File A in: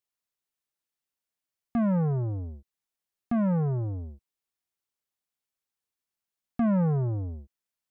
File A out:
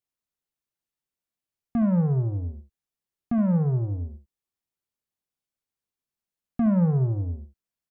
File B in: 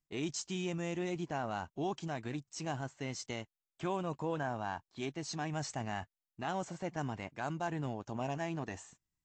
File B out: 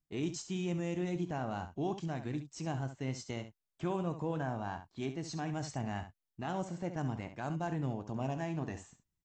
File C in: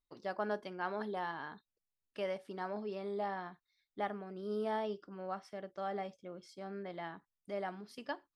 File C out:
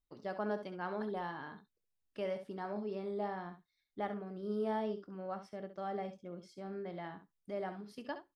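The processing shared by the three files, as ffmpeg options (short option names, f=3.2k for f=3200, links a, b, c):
-filter_complex "[0:a]lowshelf=f=440:g=8,asplit=2[a][b];[b]aecho=0:1:23|68:0.178|0.299[c];[a][c]amix=inputs=2:normalize=0,volume=-4dB"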